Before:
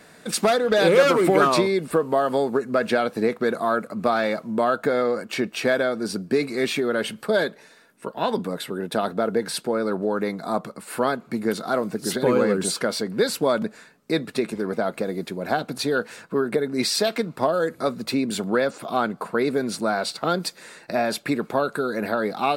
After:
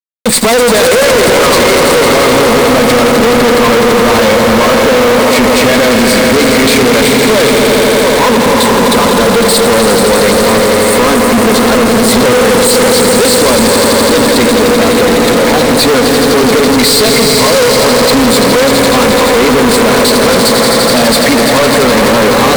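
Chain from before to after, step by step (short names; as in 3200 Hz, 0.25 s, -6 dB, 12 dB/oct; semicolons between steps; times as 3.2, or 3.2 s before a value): in parallel at -2 dB: limiter -15 dBFS, peak gain reduction 11 dB; on the sum: ripple EQ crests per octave 0.98, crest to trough 11 dB; added harmonics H 4 -16 dB, 6 -17 dB, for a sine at -1 dBFS; on a send: swelling echo 84 ms, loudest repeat 5, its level -9.5 dB; on the sum: fuzz box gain 33 dB, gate -31 dBFS; gain +7.5 dB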